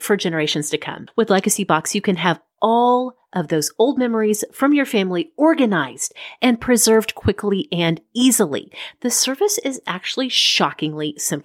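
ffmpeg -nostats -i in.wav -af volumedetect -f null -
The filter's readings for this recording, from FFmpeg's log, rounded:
mean_volume: -18.8 dB
max_volume: -2.9 dB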